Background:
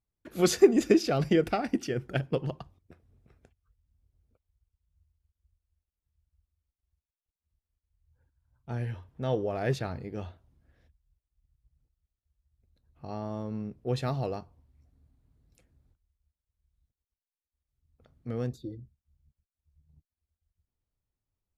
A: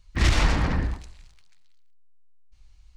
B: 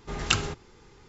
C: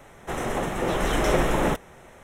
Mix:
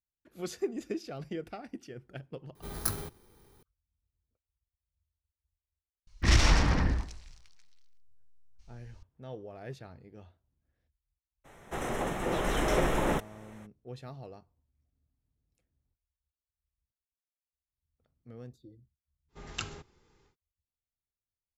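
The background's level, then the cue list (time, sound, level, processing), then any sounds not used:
background -14 dB
2.55 s: add B -7 dB + bit-reversed sample order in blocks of 16 samples
6.07 s: add A -2.5 dB + peaking EQ 5.6 kHz +7 dB 0.37 oct
11.44 s: add C -5.5 dB, fades 0.02 s
19.28 s: add B -13 dB, fades 0.10 s

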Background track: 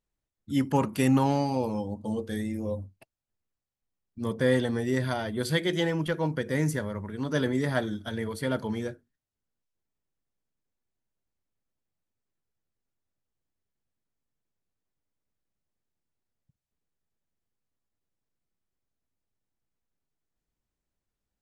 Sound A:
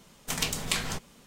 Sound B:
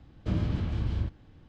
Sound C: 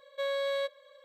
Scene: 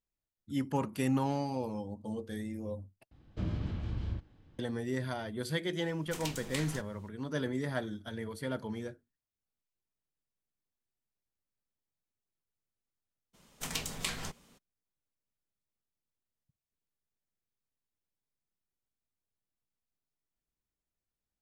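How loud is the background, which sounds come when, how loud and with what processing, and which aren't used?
background track -7.5 dB
3.11 s: replace with B -6.5 dB
5.83 s: add A -11 dB
13.33 s: add A -7 dB, fades 0.02 s
not used: C

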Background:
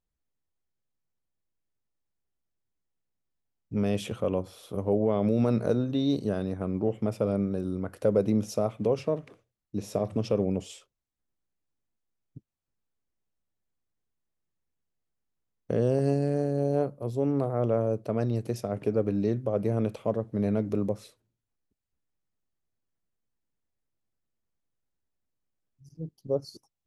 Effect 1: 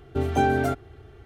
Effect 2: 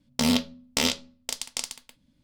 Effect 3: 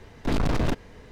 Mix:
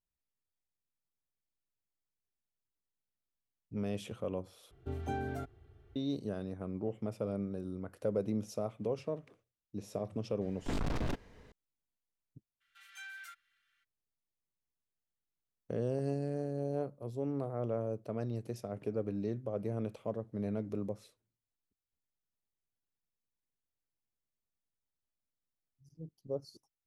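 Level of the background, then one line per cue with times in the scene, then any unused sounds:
background -9.5 dB
4.71 s: replace with 1 -17.5 dB + bass shelf 180 Hz +7 dB
10.41 s: add 3 -10.5 dB
12.60 s: add 1 -13 dB, fades 0.02 s + steep high-pass 1.5 kHz
not used: 2

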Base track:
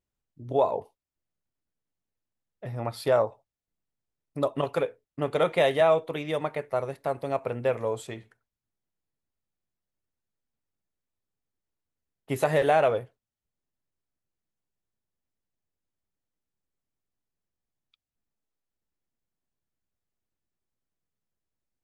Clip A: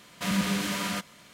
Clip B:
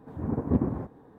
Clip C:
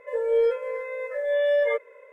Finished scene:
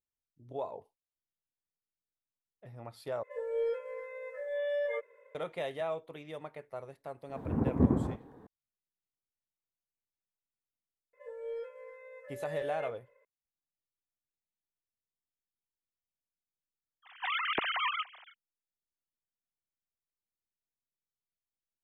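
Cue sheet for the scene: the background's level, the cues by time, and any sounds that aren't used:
base track -14.5 dB
3.23 s: replace with C -11 dB
7.29 s: add B -1 dB
11.13 s: add C -17.5 dB + peaking EQ 220 Hz -7 dB 0.88 oct
17.02 s: add A -4.5 dB, fades 0.05 s + formants replaced by sine waves

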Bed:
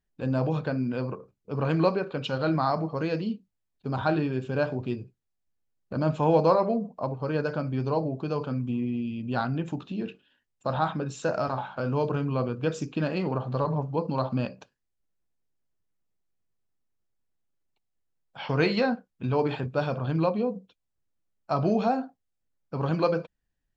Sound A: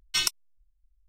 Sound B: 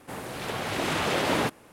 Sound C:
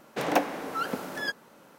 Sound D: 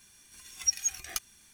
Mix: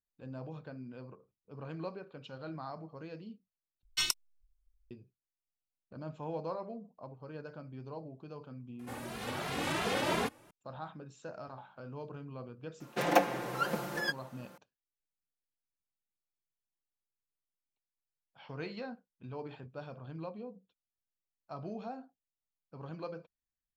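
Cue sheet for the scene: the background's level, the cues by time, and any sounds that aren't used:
bed -17.5 dB
3.83 s: replace with A -5.5 dB
8.79 s: add B -3.5 dB + endless flanger 2.5 ms +2.9 Hz
12.80 s: add C -4.5 dB + comb 5.7 ms, depth 98%
not used: D

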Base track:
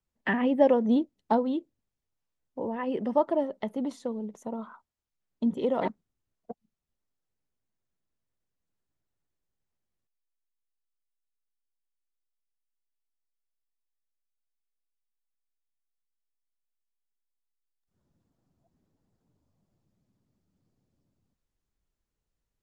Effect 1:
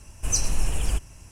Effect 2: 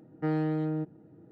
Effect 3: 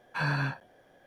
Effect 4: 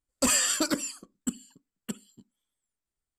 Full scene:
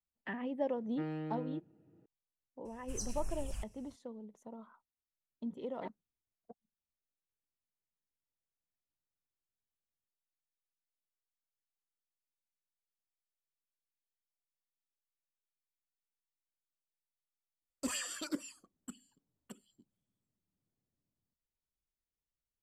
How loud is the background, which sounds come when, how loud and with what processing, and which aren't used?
base track -14 dB
0.75 s: add 2 -11.5 dB + peaking EQ 2.7 kHz +11.5 dB 0.44 oct
2.65 s: add 1 -17 dB + step-sequenced notch 9.2 Hz 400–3300 Hz
17.61 s: add 4 -17 dB + sweeping bell 4.1 Hz 300–3500 Hz +11 dB
not used: 3

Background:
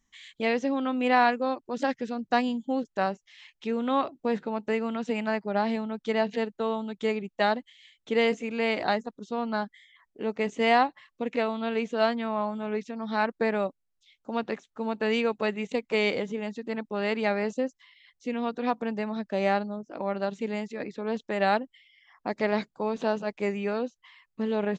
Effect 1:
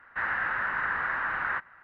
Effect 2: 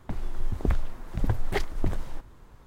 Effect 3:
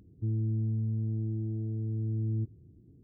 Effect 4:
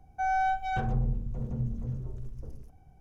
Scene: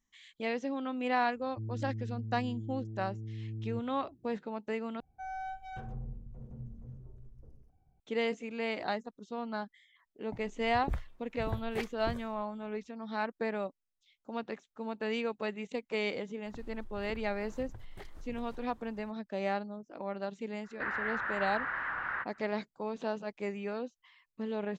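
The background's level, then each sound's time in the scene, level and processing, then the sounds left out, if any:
background -8 dB
1.35 s: add 3 -8.5 dB
5.00 s: replace with 4 -13 dB + tape noise reduction on one side only decoder only
10.23 s: add 2 -9 dB + spectral noise reduction 16 dB
16.45 s: add 2 -8.5 dB + compression 10:1, threshold -33 dBFS
20.64 s: add 1 -6 dB + warped record 78 rpm, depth 100 cents

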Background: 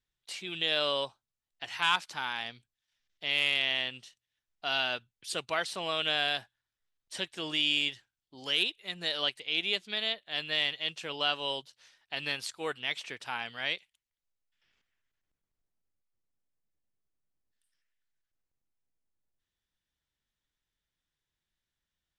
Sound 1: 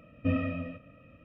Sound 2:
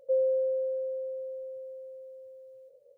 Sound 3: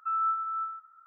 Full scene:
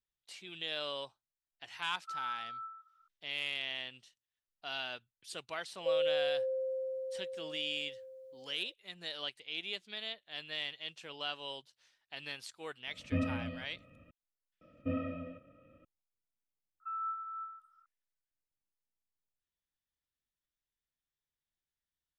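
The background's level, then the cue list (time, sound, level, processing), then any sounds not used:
background -9.5 dB
2.02 s: add 3 -11.5 dB
5.77 s: add 2 -2 dB + compression 1.5:1, threshold -32 dBFS
12.87 s: add 1 -4.5 dB
14.61 s: add 1 -11 dB + small resonant body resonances 340/530/1300/3300 Hz, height 9 dB, ringing for 25 ms
16.80 s: add 3 -10 dB

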